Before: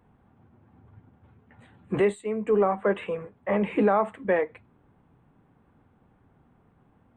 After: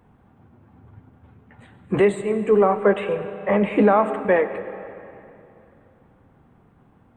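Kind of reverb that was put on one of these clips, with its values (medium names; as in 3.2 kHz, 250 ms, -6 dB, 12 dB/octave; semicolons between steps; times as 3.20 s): algorithmic reverb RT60 2.8 s, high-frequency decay 0.8×, pre-delay 55 ms, DRR 11 dB; trim +5.5 dB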